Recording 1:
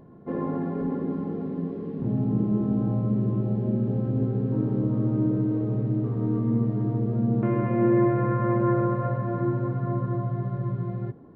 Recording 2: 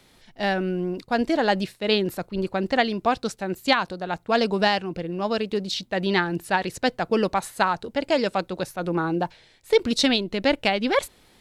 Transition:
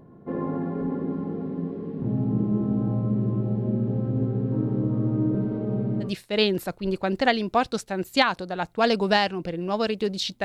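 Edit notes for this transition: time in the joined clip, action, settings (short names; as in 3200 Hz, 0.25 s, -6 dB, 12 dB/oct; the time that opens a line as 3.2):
recording 1
5.34–6.14 comb 5.1 ms, depth 80%
6.07 switch to recording 2 from 1.58 s, crossfade 0.14 s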